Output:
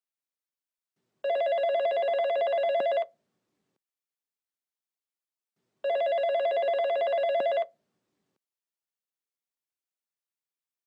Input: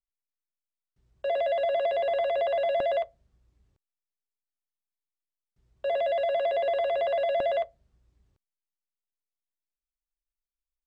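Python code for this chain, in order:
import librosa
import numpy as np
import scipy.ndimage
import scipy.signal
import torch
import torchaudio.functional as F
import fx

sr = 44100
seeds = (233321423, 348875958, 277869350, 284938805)

y = scipy.signal.sosfilt(scipy.signal.butter(4, 190.0, 'highpass', fs=sr, output='sos'), x)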